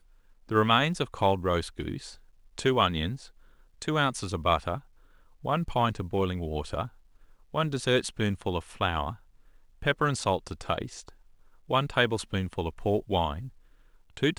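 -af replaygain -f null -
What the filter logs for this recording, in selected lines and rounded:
track_gain = +8.1 dB
track_peak = 0.255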